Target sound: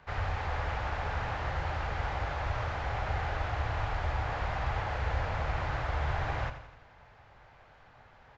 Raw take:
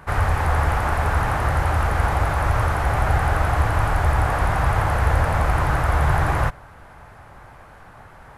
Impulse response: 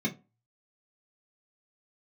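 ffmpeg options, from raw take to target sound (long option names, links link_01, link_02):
-filter_complex "[0:a]equalizer=frequency=1200:width=0.58:gain=-14,aresample=16000,aresample=44100,acrossover=split=560 4400:gain=0.2 1 0.0891[link_01][link_02][link_03];[link_01][link_02][link_03]amix=inputs=3:normalize=0,aecho=1:1:85|170|255|340|425|510:0.282|0.149|0.0792|0.042|0.0222|0.0118,asplit=2[link_04][link_05];[1:a]atrim=start_sample=2205[link_06];[link_05][link_06]afir=irnorm=-1:irlink=0,volume=-25.5dB[link_07];[link_04][link_07]amix=inputs=2:normalize=0"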